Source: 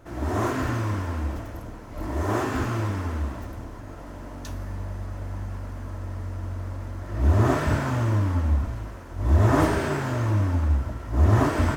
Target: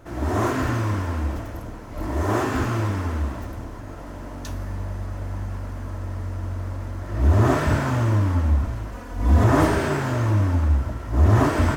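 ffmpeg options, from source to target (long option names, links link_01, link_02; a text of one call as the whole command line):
ffmpeg -i in.wav -filter_complex "[0:a]asettb=1/sr,asplit=3[link_01][link_02][link_03];[link_01]atrim=end=8.924[link_04];[link_02]atrim=start=8.92:end=9.44,asetpts=PTS-STARTPTS,afade=type=in:duration=0.004:curve=qsin,afade=type=out:start_time=0.516:duration=0.004:curve=qsin,aecho=1:1:4.1:0.83,atrim=end_sample=22932[link_05];[link_03]atrim=start=9.436[link_06];[link_04][link_05]acrossfade=duration=0.004:curve1=hsin:curve2=qsin[link_07];[link_07][link_06]acrossfade=duration=0.004:curve1=qsin:curve2=hsin,asplit=2[link_08][link_09];[link_09]aeval=exprs='0.422*sin(PI/2*1.41*val(0)/0.422)':channel_layout=same,volume=-9dB[link_10];[link_08][link_10]amix=inputs=2:normalize=0,volume=-2dB" out.wav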